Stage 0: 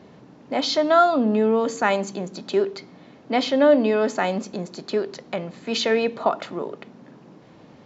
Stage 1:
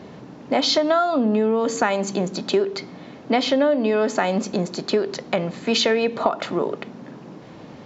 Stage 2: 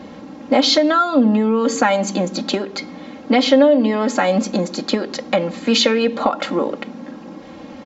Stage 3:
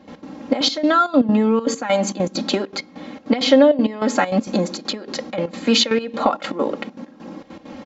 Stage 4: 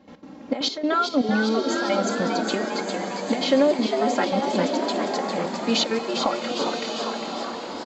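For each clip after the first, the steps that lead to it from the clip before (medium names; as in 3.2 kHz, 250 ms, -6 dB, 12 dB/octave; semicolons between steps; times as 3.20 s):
compression 10:1, threshold -23 dBFS, peak gain reduction 12.5 dB; trim +7.5 dB
comb 3.7 ms, depth 79%; trim +2.5 dB
trance gate ".x.xxxx.x..xxx" 198 bpm -12 dB
frequency-shifting echo 403 ms, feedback 61%, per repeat +130 Hz, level -6.5 dB; swelling reverb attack 1130 ms, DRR 5.5 dB; trim -6.5 dB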